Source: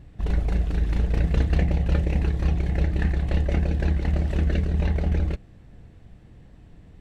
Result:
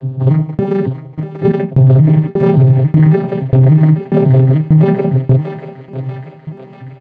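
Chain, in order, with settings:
vocoder with an arpeggio as carrier minor triad, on C3, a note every 283 ms
low-pass filter 1,700 Hz 6 dB per octave
comb filter 7.4 ms, depth 98%
0:00.88–0:01.52: compressor whose output falls as the input rises −36 dBFS, ratio −0.5
shaped tremolo saw down 1.7 Hz, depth 100%
feedback echo with a high-pass in the loop 640 ms, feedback 67%, high-pass 620 Hz, level −9.5 dB
boost into a limiter +28 dB
level −1 dB

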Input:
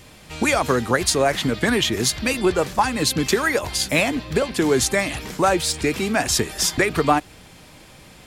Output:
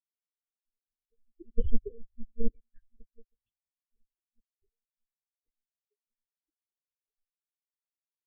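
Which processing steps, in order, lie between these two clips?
fade in at the beginning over 2.72 s
source passing by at 0:01.76, 10 m/s, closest 3.3 metres
Chebyshev band-stop filter 350–920 Hz, order 3
tilt shelving filter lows +4 dB, about 680 Hz
comb filter 5.8 ms, depth 42%
formants moved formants +4 semitones
square-wave tremolo 11 Hz, depth 60%, duty 60%
formants moved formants +6 semitones
transient designer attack +3 dB, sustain −1 dB
one-pitch LPC vocoder at 8 kHz 230 Hz
every bin expanded away from the loudest bin 4 to 1
level +3 dB

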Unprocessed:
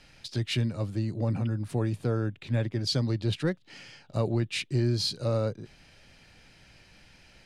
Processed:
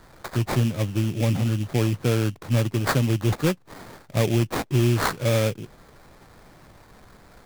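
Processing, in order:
sample-rate reduction 2,900 Hz, jitter 20%
level +6 dB

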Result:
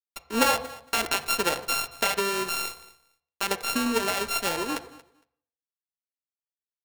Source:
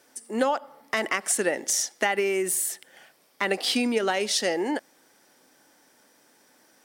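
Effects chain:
samples sorted by size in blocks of 32 samples
notch filter 1,300 Hz, Q 8.3
speech leveller within 4 dB 2 s
dead-zone distortion −34.5 dBFS
repeating echo 230 ms, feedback 16%, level −20 dB
on a send at −9 dB: convolution reverb RT60 0.60 s, pre-delay 3 ms
on the sum: level +1.5 dB

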